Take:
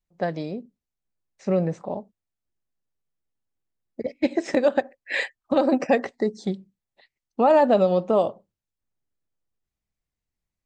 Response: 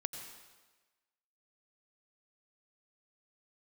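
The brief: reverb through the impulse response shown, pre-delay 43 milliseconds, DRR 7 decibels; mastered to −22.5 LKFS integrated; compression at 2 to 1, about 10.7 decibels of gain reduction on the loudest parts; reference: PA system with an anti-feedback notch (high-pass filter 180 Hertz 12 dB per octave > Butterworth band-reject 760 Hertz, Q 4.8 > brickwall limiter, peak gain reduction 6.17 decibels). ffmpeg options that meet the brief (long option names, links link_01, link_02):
-filter_complex "[0:a]acompressor=threshold=-34dB:ratio=2,asplit=2[link_01][link_02];[1:a]atrim=start_sample=2205,adelay=43[link_03];[link_02][link_03]afir=irnorm=-1:irlink=0,volume=-7dB[link_04];[link_01][link_04]amix=inputs=2:normalize=0,highpass=180,asuperstop=centerf=760:order=8:qfactor=4.8,volume=12.5dB,alimiter=limit=-10.5dB:level=0:latency=1"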